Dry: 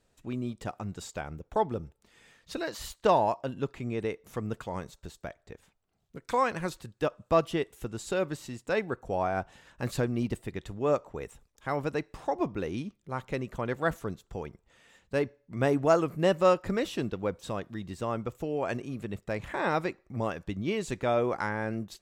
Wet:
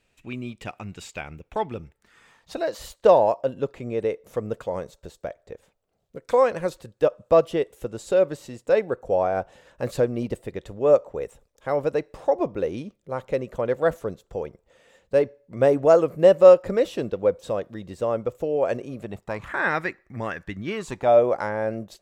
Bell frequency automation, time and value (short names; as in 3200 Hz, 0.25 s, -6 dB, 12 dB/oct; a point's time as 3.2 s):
bell +13 dB 0.7 oct
1.8 s 2500 Hz
2.72 s 530 Hz
18.94 s 530 Hz
19.7 s 1800 Hz
20.63 s 1800 Hz
21.16 s 580 Hz